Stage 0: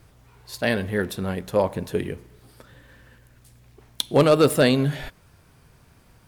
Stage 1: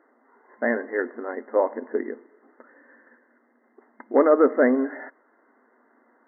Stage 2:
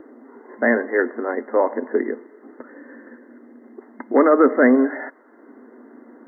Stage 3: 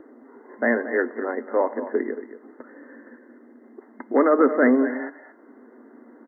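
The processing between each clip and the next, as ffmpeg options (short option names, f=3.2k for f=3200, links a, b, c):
-af "afftfilt=real='re*between(b*sr/4096,220,2100)':imag='im*between(b*sr/4096,220,2100)':win_size=4096:overlap=0.75"
-filter_complex "[0:a]acrossover=split=220|340|900[a][b][c][d];[b]acompressor=mode=upward:threshold=-36dB:ratio=2.5[e];[c]alimiter=limit=-22dB:level=0:latency=1:release=68[f];[a][e][f][d]amix=inputs=4:normalize=0,volume=7dB"
-af "aecho=1:1:227:0.224,volume=-3.5dB"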